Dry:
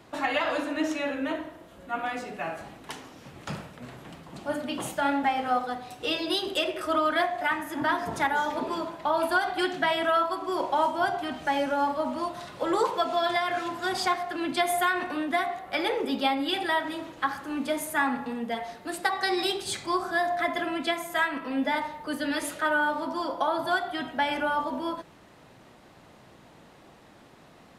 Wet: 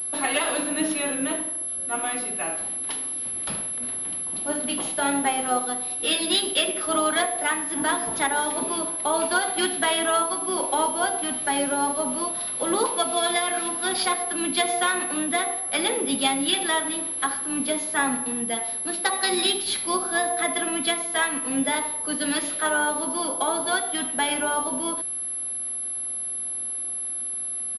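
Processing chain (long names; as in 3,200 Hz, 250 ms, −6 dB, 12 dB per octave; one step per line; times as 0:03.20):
pitch-shifted copies added −12 semitones −17 dB, −7 semitones −14 dB
graphic EQ with 10 bands 125 Hz −9 dB, 250 Hz +4 dB, 4,000 Hz +10 dB
switching amplifier with a slow clock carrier 11,000 Hz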